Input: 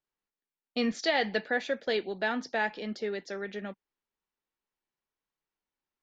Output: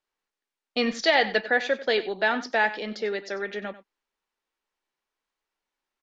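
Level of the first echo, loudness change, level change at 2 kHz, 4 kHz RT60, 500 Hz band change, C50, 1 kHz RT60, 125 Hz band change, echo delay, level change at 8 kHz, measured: −15.5 dB, +6.5 dB, +7.5 dB, no reverb audible, +5.5 dB, no reverb audible, no reverb audible, can't be measured, 94 ms, can't be measured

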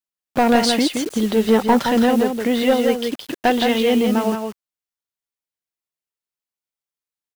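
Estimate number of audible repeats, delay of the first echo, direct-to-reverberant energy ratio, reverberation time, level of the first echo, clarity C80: 1, 169 ms, no reverb audible, no reverb audible, −5.5 dB, no reverb audible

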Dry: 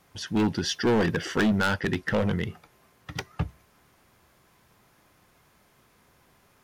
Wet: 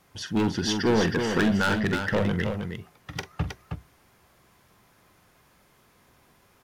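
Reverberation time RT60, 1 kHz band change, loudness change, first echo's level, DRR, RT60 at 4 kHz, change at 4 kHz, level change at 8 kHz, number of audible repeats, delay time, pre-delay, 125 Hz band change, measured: no reverb audible, +1.0 dB, +1.0 dB, −12.0 dB, no reverb audible, no reverb audible, +1.0 dB, +1.0 dB, 2, 45 ms, no reverb audible, +1.0 dB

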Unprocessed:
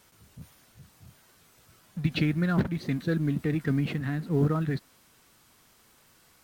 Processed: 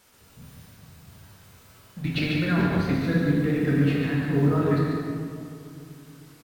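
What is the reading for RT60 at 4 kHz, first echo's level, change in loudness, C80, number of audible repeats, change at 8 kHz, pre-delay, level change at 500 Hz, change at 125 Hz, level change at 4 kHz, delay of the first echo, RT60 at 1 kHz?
1.4 s, −5.0 dB, +4.0 dB, −1.0 dB, 1, can't be measured, 10 ms, +6.0 dB, +3.5 dB, +5.5 dB, 142 ms, 2.2 s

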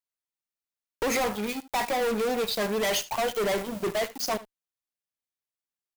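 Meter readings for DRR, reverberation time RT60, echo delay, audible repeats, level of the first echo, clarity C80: no reverb audible, no reverb audible, 75 ms, 1, −17.5 dB, no reverb audible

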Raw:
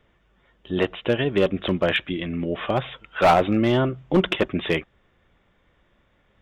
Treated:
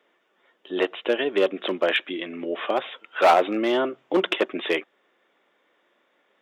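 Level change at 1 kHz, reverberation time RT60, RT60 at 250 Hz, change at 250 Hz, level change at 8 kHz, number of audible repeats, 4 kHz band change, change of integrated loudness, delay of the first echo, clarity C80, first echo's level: 0.0 dB, no reverb audible, no reverb audible, −4.5 dB, can't be measured, no echo audible, 0.0 dB, −1.5 dB, no echo audible, no reverb audible, no echo audible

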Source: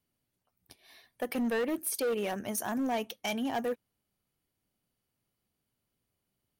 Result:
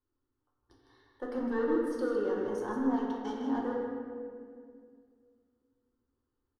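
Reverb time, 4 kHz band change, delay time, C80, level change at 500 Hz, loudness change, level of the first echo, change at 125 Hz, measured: 2.1 s, −13.5 dB, 157 ms, 0.5 dB, +1.5 dB, 0.0 dB, −6.5 dB, −3.5 dB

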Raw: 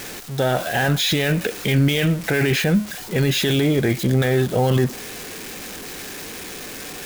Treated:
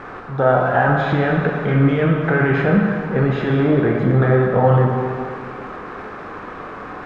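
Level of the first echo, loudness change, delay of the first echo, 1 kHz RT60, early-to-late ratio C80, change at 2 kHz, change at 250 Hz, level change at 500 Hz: no echo audible, +2.5 dB, no echo audible, 2.2 s, 3.0 dB, +2.0 dB, +3.0 dB, +4.5 dB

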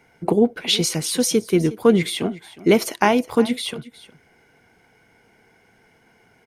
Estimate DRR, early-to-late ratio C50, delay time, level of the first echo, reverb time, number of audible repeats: no reverb audible, no reverb audible, 363 ms, −18.0 dB, no reverb audible, 1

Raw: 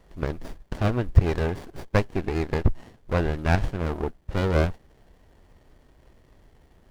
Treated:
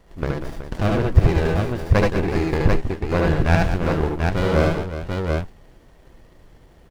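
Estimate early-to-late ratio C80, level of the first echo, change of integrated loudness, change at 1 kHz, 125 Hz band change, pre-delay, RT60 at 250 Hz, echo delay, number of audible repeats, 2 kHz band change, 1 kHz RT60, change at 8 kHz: no reverb audible, −3.5 dB, +5.0 dB, +6.0 dB, +5.5 dB, no reverb audible, no reverb audible, 72 ms, 4, +6.5 dB, no reverb audible, can't be measured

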